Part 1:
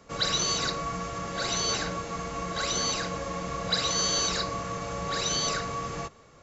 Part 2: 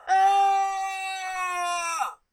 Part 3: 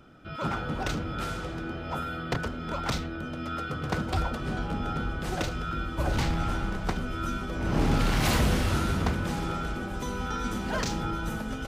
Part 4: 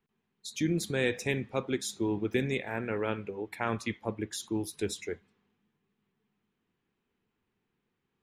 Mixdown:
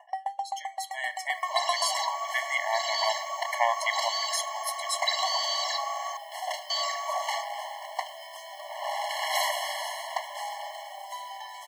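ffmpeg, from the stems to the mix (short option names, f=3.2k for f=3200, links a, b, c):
-filter_complex "[0:a]adelay=1350,volume=-9dB,asplit=3[a][b][c];[a]atrim=end=6.17,asetpts=PTS-STARTPTS,afade=t=out:st=6.166:d=0.004:c=hsin[d];[b]atrim=start=6.17:end=6.7,asetpts=PTS-STARTPTS,volume=0[e];[c]atrim=start=6.7,asetpts=PTS-STARTPTS,afade=t=in:d=0.004:c=hsin[f];[d][e][f]concat=n=3:v=0:a=1[g];[1:a]acompressor=threshold=-30dB:ratio=2.5,aeval=exprs='val(0)*pow(10,-33*if(lt(mod(7.7*n/s,1),2*abs(7.7)/1000),1-mod(7.7*n/s,1)/(2*abs(7.7)/1000),(mod(7.7*n/s,1)-2*abs(7.7)/1000)/(1-2*abs(7.7)/1000))/20)':c=same,volume=2dB[h];[2:a]acrusher=bits=8:mix=0:aa=0.000001,adelay=1100,volume=-8.5dB[i];[3:a]volume=0dB[j];[g][h][i][j]amix=inputs=4:normalize=0,dynaudnorm=f=230:g=13:m=12.5dB,afftfilt=real='re*eq(mod(floor(b*sr/1024/560),2),1)':imag='im*eq(mod(floor(b*sr/1024/560),2),1)':win_size=1024:overlap=0.75"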